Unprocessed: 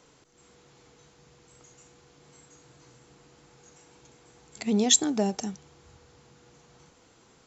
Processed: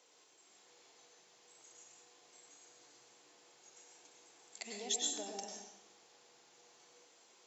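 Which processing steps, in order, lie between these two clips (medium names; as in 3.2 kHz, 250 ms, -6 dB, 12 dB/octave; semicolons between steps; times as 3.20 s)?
compression 2.5:1, threshold -34 dBFS, peak gain reduction 12.5 dB; high-pass 620 Hz 12 dB/octave; peaking EQ 1.3 kHz -7.5 dB 1.1 oct; plate-style reverb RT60 0.75 s, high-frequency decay 0.9×, pre-delay 85 ms, DRR -0.5 dB; trim -4.5 dB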